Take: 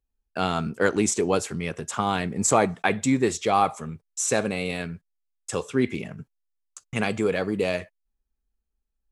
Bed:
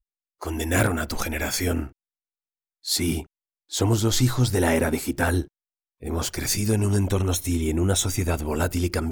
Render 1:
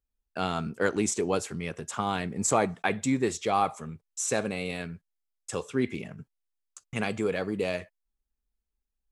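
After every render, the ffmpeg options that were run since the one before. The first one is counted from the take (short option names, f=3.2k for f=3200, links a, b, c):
-af "volume=-4.5dB"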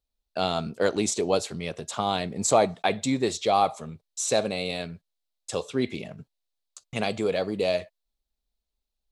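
-af "equalizer=f=630:t=o:w=0.67:g=8,equalizer=f=1.6k:t=o:w=0.67:g=-4,equalizer=f=4k:t=o:w=0.67:g=11"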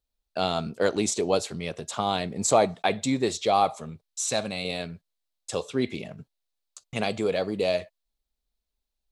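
-filter_complex "[0:a]asettb=1/sr,asplit=3[a][b][c];[a]atrim=end=4.074[d];[b]atrim=start=4.07:end=4.65,asetpts=PTS-STARTPTS,afade=t=in:d=0.004:c=qsin,afade=t=out:st=0.576:d=0.004:c=qsin,equalizer=f=430:w=1.5:g=-9[e];[c]atrim=start=4.646[f];[d][e]acrossfade=d=0.004:c1=hsin:c2=qsin[g];[g][f]acrossfade=d=0.004:c1=qsin:c2=hsin"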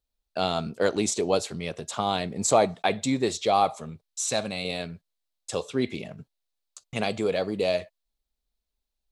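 -af anull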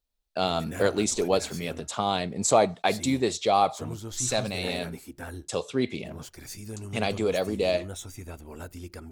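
-filter_complex "[1:a]volume=-16.5dB[a];[0:a][a]amix=inputs=2:normalize=0"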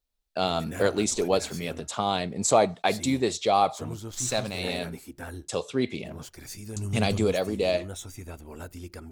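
-filter_complex "[0:a]asettb=1/sr,asplit=3[a][b][c];[a]atrim=end=4.114[d];[b]atrim=start=4.11:end=4.6,asetpts=PTS-STARTPTS,afade=t=in:d=0.004:c=qsin,afade=t=out:st=0.486:d=0.004:c=qsin,aeval=exprs='sgn(val(0))*max(abs(val(0))-0.00668,0)':c=same[e];[c]atrim=start=4.596[f];[d][e]acrossfade=d=0.004:c1=hsin:c2=qsin[g];[g][f]acrossfade=d=0.004:c1=qsin:c2=hsin,asettb=1/sr,asplit=3[h][i][j];[h]atrim=end=6.764[k];[i]atrim=start=6.76:end=7.32,asetpts=PTS-STARTPTS,afade=t=in:d=0.004:c=qsin,afade=t=out:st=0.556:d=0.004:c=qsin,bass=f=250:g=8,treble=f=4k:g=6[l];[j]atrim=start=7.316[m];[k][l]acrossfade=d=0.004:c1=hsin:c2=qsin[n];[n][m]acrossfade=d=0.004:c1=qsin:c2=hsin"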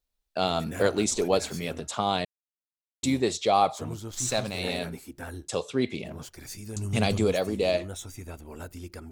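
-filter_complex "[0:a]asplit=3[a][b][c];[a]atrim=end=2.25,asetpts=PTS-STARTPTS,afade=t=out:st=2.246:d=0.004:c=hsin[d];[b]atrim=start=2.25:end=3.03,asetpts=PTS-STARTPTS,volume=0[e];[c]atrim=start=3.03,asetpts=PTS-STARTPTS,afade=t=in:d=0.004:c=hsin[f];[d][e][f]concat=n=3:v=0:a=1"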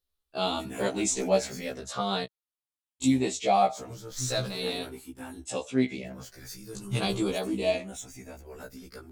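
-af "afftfilt=real='re*pow(10,6/40*sin(2*PI*(0.61*log(max(b,1)*sr/1024/100)/log(2)-(-0.44)*(pts-256)/sr)))':imag='im*pow(10,6/40*sin(2*PI*(0.61*log(max(b,1)*sr/1024/100)/log(2)-(-0.44)*(pts-256)/sr)))':win_size=1024:overlap=0.75,afftfilt=real='re*1.73*eq(mod(b,3),0)':imag='im*1.73*eq(mod(b,3),0)':win_size=2048:overlap=0.75"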